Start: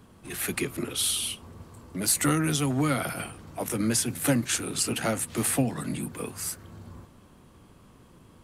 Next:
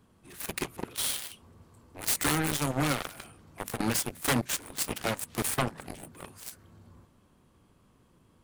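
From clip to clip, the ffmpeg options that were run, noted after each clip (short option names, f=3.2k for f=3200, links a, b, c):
-af "aeval=exprs='0.316*(cos(1*acos(clip(val(0)/0.316,-1,1)))-cos(1*PI/2))+0.00501*(cos(3*acos(clip(val(0)/0.316,-1,1)))-cos(3*PI/2))+0.0501*(cos(7*acos(clip(val(0)/0.316,-1,1)))-cos(7*PI/2))':c=same,aeval=exprs='0.282*sin(PI/2*3.55*val(0)/0.282)':c=same,volume=-8dB"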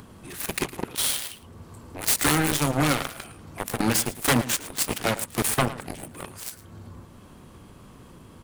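-filter_complex "[0:a]asplit=2[a][b];[b]acompressor=mode=upward:threshold=-35dB:ratio=2.5,volume=-0.5dB[c];[a][c]amix=inputs=2:normalize=0,asplit=2[d][e];[e]adelay=110.8,volume=-15dB,highshelf=f=4k:g=-2.49[f];[d][f]amix=inputs=2:normalize=0"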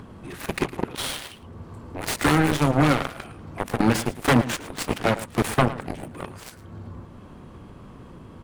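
-af "lowpass=f=1.8k:p=1,volume=4.5dB"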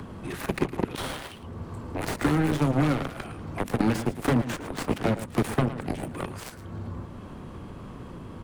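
-filter_complex "[0:a]acrossover=split=96|440|1800[a][b][c][d];[a]acompressor=threshold=-39dB:ratio=4[e];[b]acompressor=threshold=-25dB:ratio=4[f];[c]acompressor=threshold=-36dB:ratio=4[g];[d]acompressor=threshold=-43dB:ratio=4[h];[e][f][g][h]amix=inputs=4:normalize=0,volume=3dB"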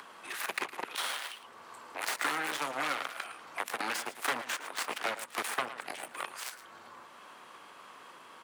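-af "highpass=1.1k,volume=2dB"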